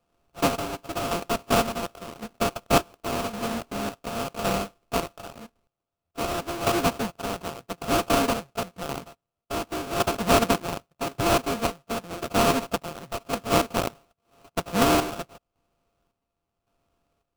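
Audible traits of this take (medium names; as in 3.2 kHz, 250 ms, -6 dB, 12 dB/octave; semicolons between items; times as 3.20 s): a buzz of ramps at a fixed pitch in blocks of 64 samples; chopped level 0.9 Hz, depth 65%, duty 50%; aliases and images of a low sample rate 1.9 kHz, jitter 20%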